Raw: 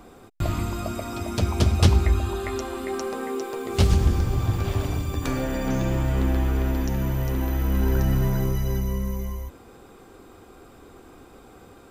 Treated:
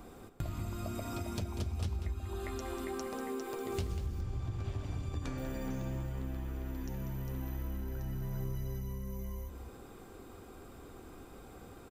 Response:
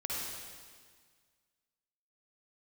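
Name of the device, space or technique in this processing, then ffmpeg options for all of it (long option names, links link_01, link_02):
ASMR close-microphone chain: -filter_complex "[0:a]lowshelf=frequency=200:gain=5,acompressor=threshold=-30dB:ratio=6,highshelf=frequency=9200:gain=5.5,asettb=1/sr,asplit=3[link_01][link_02][link_03];[link_01]atrim=end=4.214[link_04];[link_02]atrim=start=4.21:end=5.38,asetpts=PTS-STARTPTS,afade=type=in:duration=0.004:curve=qsin,afade=type=out:start_time=1.166:duration=0.004:curve=qsin,lowpass=7300[link_05];[link_03]atrim=start=5.376[link_06];[link_04][link_05]acrossfade=duration=0.004:curve1=hsin:curve2=qsin[link_07];[link_07][link_06]acrossfade=duration=0.004:curve1=qsin:curve2=hsin,asplit=2[link_08][link_09];[link_09]adelay=192.4,volume=-9dB,highshelf=frequency=4000:gain=-4.33[link_10];[link_08][link_10]amix=inputs=2:normalize=0,volume=-5.5dB"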